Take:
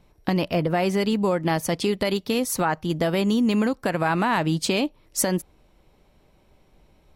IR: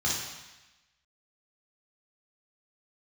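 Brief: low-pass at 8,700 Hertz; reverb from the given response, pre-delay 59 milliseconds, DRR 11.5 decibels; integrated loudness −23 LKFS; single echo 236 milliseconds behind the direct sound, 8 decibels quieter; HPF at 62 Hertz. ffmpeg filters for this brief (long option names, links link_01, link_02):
-filter_complex "[0:a]highpass=62,lowpass=8700,aecho=1:1:236:0.398,asplit=2[link_01][link_02];[1:a]atrim=start_sample=2205,adelay=59[link_03];[link_02][link_03]afir=irnorm=-1:irlink=0,volume=-21dB[link_04];[link_01][link_04]amix=inputs=2:normalize=0"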